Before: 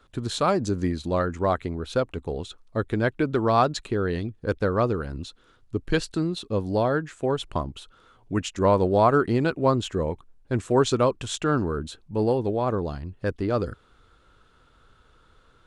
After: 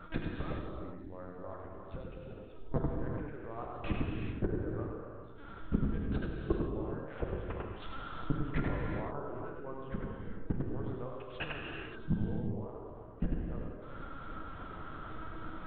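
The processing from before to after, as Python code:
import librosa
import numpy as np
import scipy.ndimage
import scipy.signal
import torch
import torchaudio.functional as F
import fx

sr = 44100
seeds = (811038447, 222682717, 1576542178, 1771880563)

p1 = scipy.signal.sosfilt(scipy.signal.butter(2, 1900.0, 'lowpass', fs=sr, output='sos'), x)
p2 = fx.gate_flip(p1, sr, shuts_db=-27.0, range_db=-35)
p3 = p2 + fx.echo_single(p2, sr, ms=95, db=-4.0, dry=0)
p4 = fx.lpc_vocoder(p3, sr, seeds[0], excitation='pitch_kept', order=8)
p5 = fx.rev_gated(p4, sr, seeds[1], gate_ms=450, shape='flat', drr_db=-0.5)
y = p5 * librosa.db_to_amplitude(10.0)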